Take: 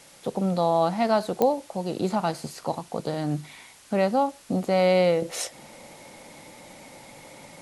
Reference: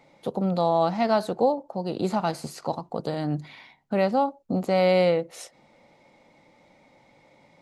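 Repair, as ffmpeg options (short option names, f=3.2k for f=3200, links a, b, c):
-af "adeclick=t=4,afwtdn=0.0032,asetnsamples=n=441:p=0,asendcmd='5.22 volume volume -10.5dB',volume=0dB"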